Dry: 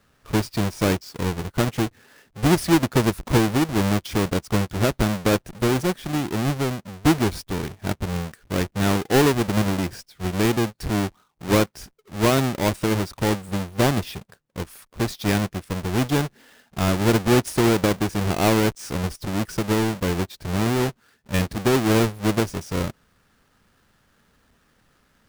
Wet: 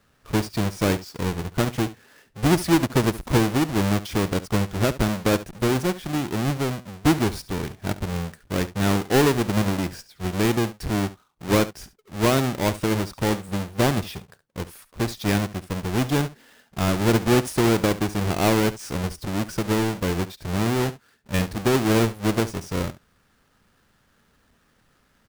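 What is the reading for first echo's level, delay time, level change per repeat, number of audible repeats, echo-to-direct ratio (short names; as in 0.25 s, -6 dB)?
-16.0 dB, 70 ms, no steady repeat, 1, -16.0 dB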